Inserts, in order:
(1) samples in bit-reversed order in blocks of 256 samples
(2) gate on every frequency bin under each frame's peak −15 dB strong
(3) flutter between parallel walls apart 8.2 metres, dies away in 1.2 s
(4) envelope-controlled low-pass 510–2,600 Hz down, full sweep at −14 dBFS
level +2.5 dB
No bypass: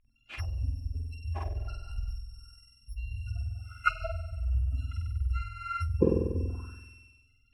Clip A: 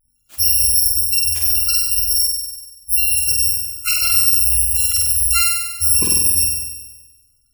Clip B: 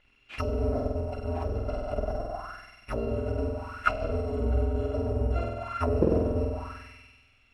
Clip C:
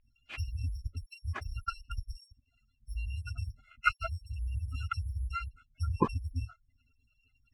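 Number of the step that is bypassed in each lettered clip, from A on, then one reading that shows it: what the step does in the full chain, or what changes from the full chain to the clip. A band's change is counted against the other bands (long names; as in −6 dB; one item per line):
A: 4, change in crest factor −8.0 dB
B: 2, 500 Hz band +6.0 dB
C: 3, change in momentary loudness spread −4 LU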